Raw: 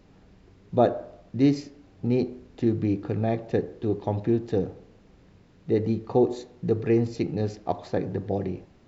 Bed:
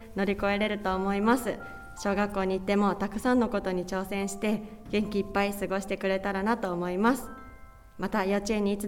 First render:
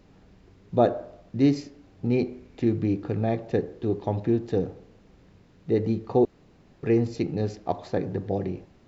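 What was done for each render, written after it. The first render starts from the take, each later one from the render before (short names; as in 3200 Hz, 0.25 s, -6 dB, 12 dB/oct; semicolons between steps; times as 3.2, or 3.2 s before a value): 2.13–2.78 bell 2300 Hz +8 dB 0.25 oct; 6.25–6.83 room tone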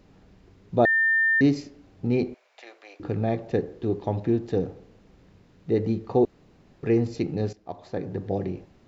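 0.85–1.41 bleep 1800 Hz -18 dBFS; 2.34–3 Chebyshev high-pass 610 Hz, order 4; 7.53–8.32 fade in linear, from -15.5 dB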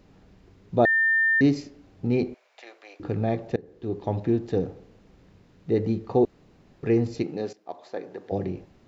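3.56–4.12 fade in, from -22 dB; 7.22–8.31 HPF 230 Hz -> 520 Hz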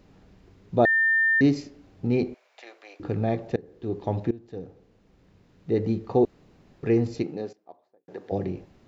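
4.31–5.92 fade in, from -19.5 dB; 7.09–8.08 studio fade out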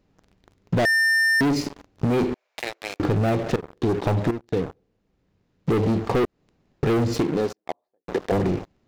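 sample leveller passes 5; compressor, threshold -20 dBFS, peak gain reduction 9.5 dB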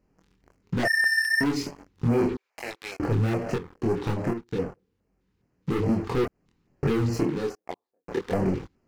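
chorus voices 2, 1.1 Hz, delay 24 ms, depth 3 ms; LFO notch square 2.4 Hz 640–3600 Hz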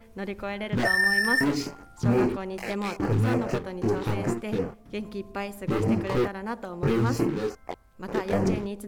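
add bed -6 dB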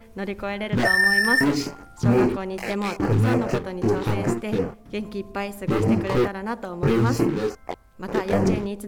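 gain +4 dB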